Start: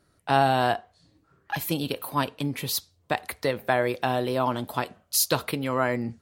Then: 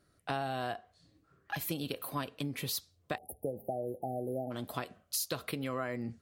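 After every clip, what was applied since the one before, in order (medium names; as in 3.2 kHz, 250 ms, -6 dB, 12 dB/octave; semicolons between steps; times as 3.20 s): band-stop 900 Hz, Q 5.7; compression 4:1, threshold -28 dBFS, peak gain reduction 10.5 dB; spectral selection erased 3.17–4.51 s, 840–9400 Hz; trim -4.5 dB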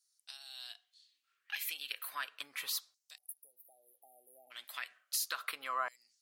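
LFO high-pass saw down 0.34 Hz 990–6200 Hz; trim -1 dB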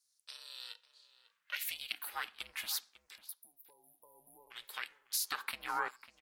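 ring modulator 220 Hz; echo from a far wall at 94 m, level -14 dB; trim +3 dB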